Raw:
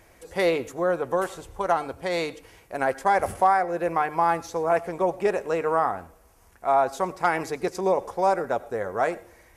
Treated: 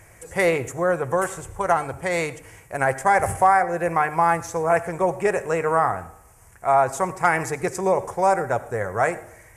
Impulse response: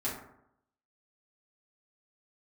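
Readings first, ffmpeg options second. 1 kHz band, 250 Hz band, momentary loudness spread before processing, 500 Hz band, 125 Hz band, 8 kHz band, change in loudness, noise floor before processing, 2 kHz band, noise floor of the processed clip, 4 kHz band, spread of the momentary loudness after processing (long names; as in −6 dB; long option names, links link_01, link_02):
+3.0 dB, +2.0 dB, 8 LU, +2.0 dB, +8.5 dB, +9.0 dB, +3.0 dB, −56 dBFS, +6.0 dB, −50 dBFS, can't be measured, 8 LU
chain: -filter_complex "[0:a]equalizer=frequency=125:width_type=o:width=1:gain=12,equalizer=frequency=250:width_type=o:width=1:gain=-6,equalizer=frequency=2000:width_type=o:width=1:gain=6,equalizer=frequency=4000:width_type=o:width=1:gain=-11,equalizer=frequency=8000:width_type=o:width=1:gain=11,asplit=2[link_01][link_02];[1:a]atrim=start_sample=2205,adelay=53[link_03];[link_02][link_03]afir=irnorm=-1:irlink=0,volume=-22.5dB[link_04];[link_01][link_04]amix=inputs=2:normalize=0,volume=2.5dB"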